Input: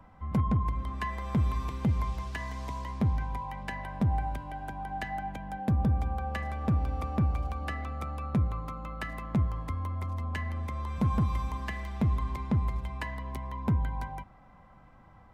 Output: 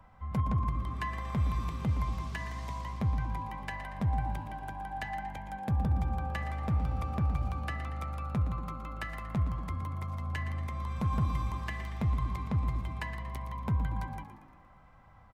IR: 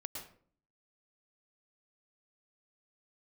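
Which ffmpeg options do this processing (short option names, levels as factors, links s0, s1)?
-filter_complex "[0:a]equalizer=f=280:t=o:w=1.5:g=-7.5,asplit=6[s0][s1][s2][s3][s4][s5];[s1]adelay=117,afreqshift=52,volume=0.251[s6];[s2]adelay=234,afreqshift=104,volume=0.123[s7];[s3]adelay=351,afreqshift=156,volume=0.0603[s8];[s4]adelay=468,afreqshift=208,volume=0.0295[s9];[s5]adelay=585,afreqshift=260,volume=0.0145[s10];[s0][s6][s7][s8][s9][s10]amix=inputs=6:normalize=0,asplit=2[s11][s12];[1:a]atrim=start_sample=2205[s13];[s12][s13]afir=irnorm=-1:irlink=0,volume=0.178[s14];[s11][s14]amix=inputs=2:normalize=0,volume=0.794"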